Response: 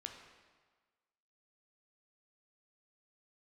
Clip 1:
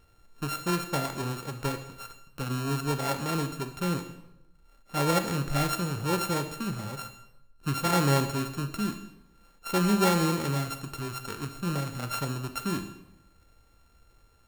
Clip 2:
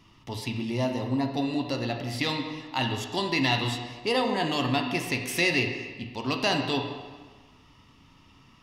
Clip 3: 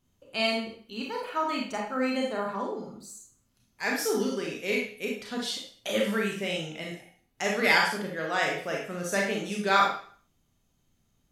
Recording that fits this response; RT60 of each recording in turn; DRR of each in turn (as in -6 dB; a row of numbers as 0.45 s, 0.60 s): 2; 0.90 s, 1.4 s, 0.50 s; 8.5 dB, 3.0 dB, -1.5 dB